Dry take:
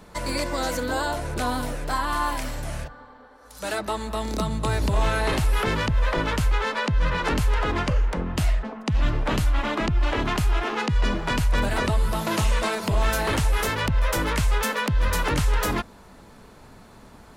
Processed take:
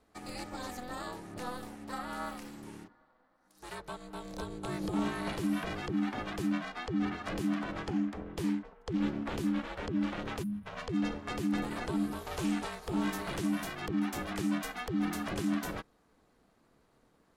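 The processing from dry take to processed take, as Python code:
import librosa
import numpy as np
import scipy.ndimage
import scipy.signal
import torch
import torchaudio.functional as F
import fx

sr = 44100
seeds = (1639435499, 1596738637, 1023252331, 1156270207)

y = x * np.sin(2.0 * np.pi * 250.0 * np.arange(len(x)) / sr)
y = fx.spec_box(y, sr, start_s=10.43, length_s=0.23, low_hz=270.0, high_hz=9000.0, gain_db=-22)
y = fx.upward_expand(y, sr, threshold_db=-40.0, expansion=1.5)
y = F.gain(torch.from_numpy(y), -7.5).numpy()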